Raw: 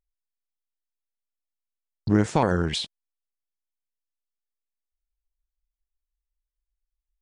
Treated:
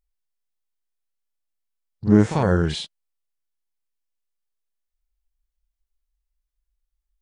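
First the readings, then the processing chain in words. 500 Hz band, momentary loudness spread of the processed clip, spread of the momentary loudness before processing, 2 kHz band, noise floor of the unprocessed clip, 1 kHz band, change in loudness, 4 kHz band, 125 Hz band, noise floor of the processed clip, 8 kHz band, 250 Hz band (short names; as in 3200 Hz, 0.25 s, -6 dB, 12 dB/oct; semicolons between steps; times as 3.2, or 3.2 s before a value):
+3.5 dB, 14 LU, 14 LU, +1.0 dB, under -85 dBFS, -1.5 dB, +4.0 dB, -1.5 dB, +5.0 dB, -81 dBFS, -1.5 dB, +5.5 dB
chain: reverse echo 43 ms -11 dB; harmonic-percussive split percussive -16 dB; gain +6.5 dB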